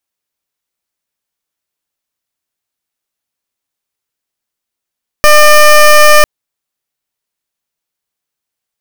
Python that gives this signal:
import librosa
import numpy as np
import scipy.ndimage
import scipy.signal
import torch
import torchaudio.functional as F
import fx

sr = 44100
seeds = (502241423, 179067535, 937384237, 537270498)

y = fx.pulse(sr, length_s=1.0, hz=601.0, level_db=-3.0, duty_pct=16)